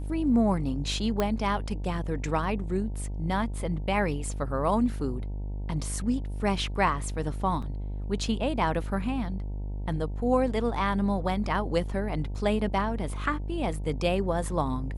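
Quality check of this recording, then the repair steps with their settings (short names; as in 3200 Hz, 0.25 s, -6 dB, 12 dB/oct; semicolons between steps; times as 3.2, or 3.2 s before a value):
buzz 50 Hz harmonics 19 -33 dBFS
1.2 pop -13 dBFS
7.62 gap 4.8 ms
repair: de-click; de-hum 50 Hz, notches 19; interpolate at 7.62, 4.8 ms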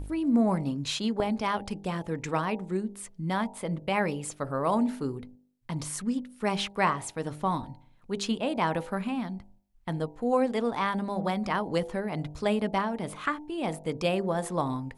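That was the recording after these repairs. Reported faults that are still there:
none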